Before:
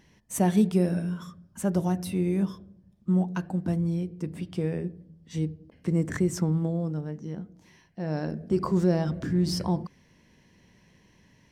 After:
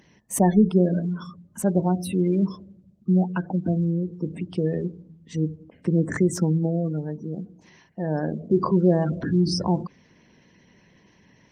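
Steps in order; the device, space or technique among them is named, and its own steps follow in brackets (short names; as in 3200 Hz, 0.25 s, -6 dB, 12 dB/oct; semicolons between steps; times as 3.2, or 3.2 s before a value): noise-suppressed video call (HPF 150 Hz 6 dB/oct; spectral gate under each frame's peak -25 dB strong; gain +6 dB; Opus 24 kbps 48000 Hz)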